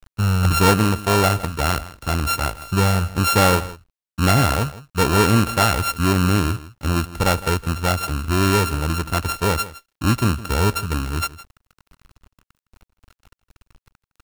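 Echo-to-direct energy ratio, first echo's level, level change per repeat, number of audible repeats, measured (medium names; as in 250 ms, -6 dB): -17.0 dB, -17.0 dB, no regular repeats, 1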